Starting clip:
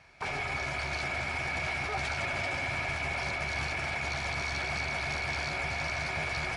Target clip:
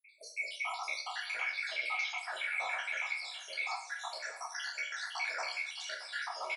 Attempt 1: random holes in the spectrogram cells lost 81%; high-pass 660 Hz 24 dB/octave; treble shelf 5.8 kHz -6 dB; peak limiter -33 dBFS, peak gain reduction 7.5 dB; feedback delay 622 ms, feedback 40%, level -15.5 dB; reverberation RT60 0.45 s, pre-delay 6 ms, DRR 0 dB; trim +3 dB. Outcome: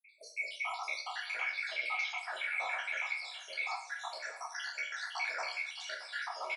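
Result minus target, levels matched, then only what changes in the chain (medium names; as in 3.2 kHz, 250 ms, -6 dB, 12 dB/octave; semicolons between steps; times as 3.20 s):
8 kHz band -3.0 dB
remove: treble shelf 5.8 kHz -6 dB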